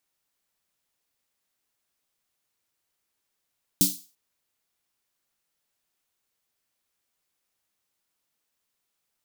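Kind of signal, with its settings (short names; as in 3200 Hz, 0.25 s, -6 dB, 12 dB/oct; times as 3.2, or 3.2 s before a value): snare drum length 0.34 s, tones 190 Hz, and 290 Hz, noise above 3900 Hz, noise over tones 4.5 dB, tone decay 0.25 s, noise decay 0.36 s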